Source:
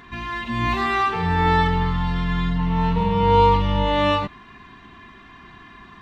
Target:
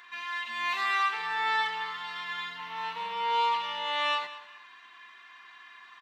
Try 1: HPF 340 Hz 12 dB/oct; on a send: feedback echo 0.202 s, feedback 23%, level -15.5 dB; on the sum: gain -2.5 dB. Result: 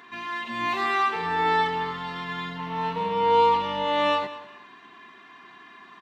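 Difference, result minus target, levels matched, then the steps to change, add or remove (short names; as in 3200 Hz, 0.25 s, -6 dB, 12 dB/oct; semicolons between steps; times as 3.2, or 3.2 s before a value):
250 Hz band +17.0 dB
change: HPF 1300 Hz 12 dB/oct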